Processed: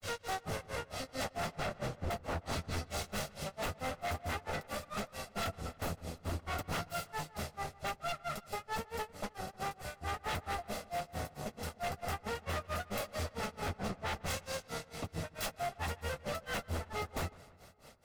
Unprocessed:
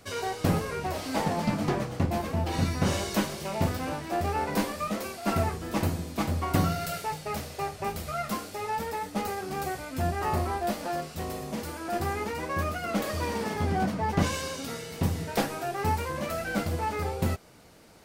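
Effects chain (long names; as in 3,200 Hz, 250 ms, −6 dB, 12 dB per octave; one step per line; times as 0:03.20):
lower of the sound and its delayed copy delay 1.5 ms
upward compression, threshold −48 dBFS
granular cloud 194 ms, grains 4.5 per second, pitch spread up and down by 0 semitones
wave folding −30.5 dBFS
feedback echo with a low-pass in the loop 155 ms, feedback 63%, low-pass 3,200 Hz, level −21 dB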